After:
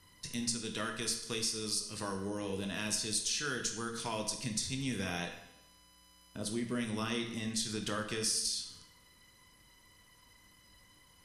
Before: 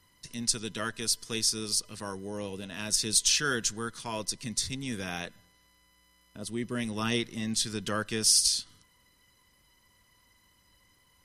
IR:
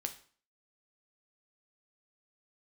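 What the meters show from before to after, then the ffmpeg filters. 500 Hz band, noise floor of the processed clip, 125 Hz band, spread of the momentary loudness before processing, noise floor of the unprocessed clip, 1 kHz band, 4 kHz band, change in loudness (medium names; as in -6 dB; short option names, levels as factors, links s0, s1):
-3.0 dB, -63 dBFS, -3.0 dB, 15 LU, -66 dBFS, -3.5 dB, -7.0 dB, -6.5 dB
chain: -filter_complex "[0:a]acompressor=threshold=0.0158:ratio=4[s0];[1:a]atrim=start_sample=2205,asetrate=24255,aresample=44100[s1];[s0][s1]afir=irnorm=-1:irlink=0"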